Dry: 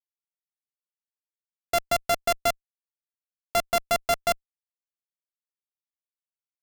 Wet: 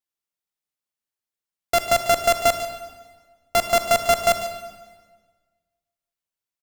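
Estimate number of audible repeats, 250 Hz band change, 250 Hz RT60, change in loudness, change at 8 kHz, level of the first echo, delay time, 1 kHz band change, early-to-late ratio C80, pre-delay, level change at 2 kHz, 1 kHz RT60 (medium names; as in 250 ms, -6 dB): 1, +5.0 dB, 1.6 s, +5.5 dB, +6.0 dB, -13.5 dB, 145 ms, +6.0 dB, 9.0 dB, 38 ms, +5.5 dB, 1.4 s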